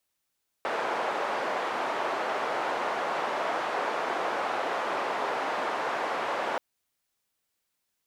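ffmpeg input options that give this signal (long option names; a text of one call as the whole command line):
ffmpeg -f lavfi -i "anoisesrc=color=white:duration=5.93:sample_rate=44100:seed=1,highpass=frequency=580,lowpass=frequency=870,volume=-7.8dB" out.wav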